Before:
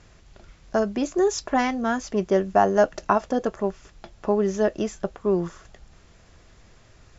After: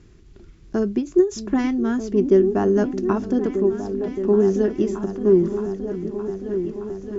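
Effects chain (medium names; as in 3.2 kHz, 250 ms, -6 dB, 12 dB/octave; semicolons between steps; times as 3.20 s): resonant low shelf 470 Hz +8 dB, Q 3; delay with an opening low-pass 619 ms, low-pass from 200 Hz, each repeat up 2 oct, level -6 dB; endings held to a fixed fall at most 210 dB/s; trim -5 dB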